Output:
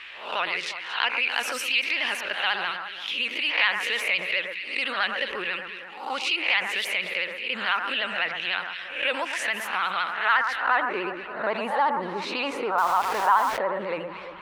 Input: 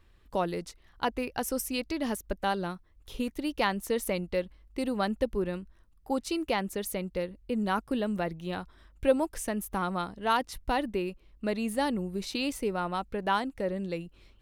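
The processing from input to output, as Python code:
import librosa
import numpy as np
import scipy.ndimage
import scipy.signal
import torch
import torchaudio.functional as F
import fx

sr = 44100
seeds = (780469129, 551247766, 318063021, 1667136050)

y = fx.spec_swells(x, sr, rise_s=0.33)
y = fx.vibrato(y, sr, rate_hz=14.0, depth_cents=98.0)
y = fx.filter_sweep_bandpass(y, sr, from_hz=2600.0, to_hz=1000.0, start_s=9.93, end_s=11.09, q=2.5)
y = fx.echo_alternate(y, sr, ms=116, hz=1800.0, feedback_pct=53, wet_db=-11.5)
y = fx.quant_dither(y, sr, seeds[0], bits=8, dither='none', at=(12.78, 13.58))
y = fx.peak_eq(y, sr, hz=1700.0, db=9.5, octaves=2.7)
y = fx.env_flatten(y, sr, amount_pct=50)
y = y * librosa.db_to_amplitude(1.5)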